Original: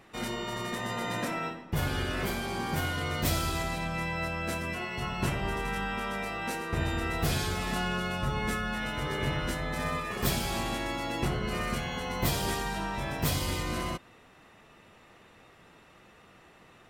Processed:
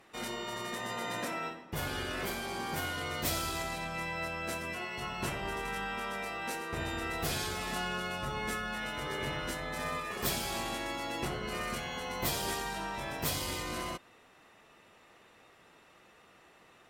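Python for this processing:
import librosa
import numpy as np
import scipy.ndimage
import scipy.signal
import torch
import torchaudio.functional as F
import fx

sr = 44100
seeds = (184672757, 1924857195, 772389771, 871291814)

y = fx.cheby_harmonics(x, sr, harmonics=(8,), levels_db=(-36,), full_scale_db=-14.0)
y = fx.bass_treble(y, sr, bass_db=-7, treble_db=2)
y = y * 10.0 ** (-3.0 / 20.0)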